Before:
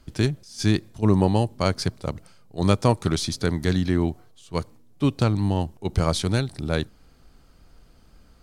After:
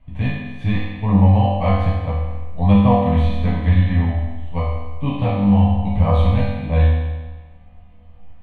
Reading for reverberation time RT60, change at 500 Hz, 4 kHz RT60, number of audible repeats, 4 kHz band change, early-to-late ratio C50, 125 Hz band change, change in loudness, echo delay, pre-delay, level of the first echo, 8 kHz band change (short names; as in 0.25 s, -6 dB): 1.3 s, +2.0 dB, 1.2 s, none, -5.5 dB, -1.0 dB, +8.0 dB, +6.0 dB, none, 4 ms, none, under -25 dB